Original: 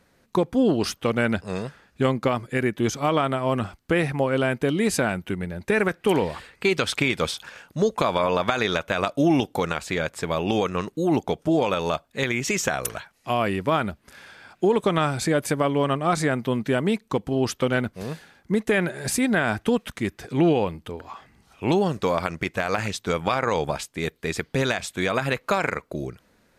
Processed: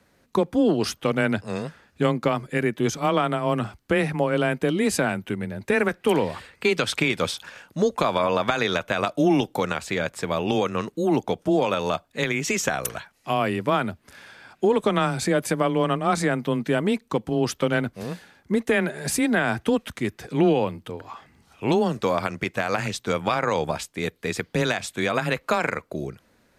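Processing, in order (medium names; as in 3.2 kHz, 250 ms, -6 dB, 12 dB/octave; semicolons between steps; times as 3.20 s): frequency shift +15 Hz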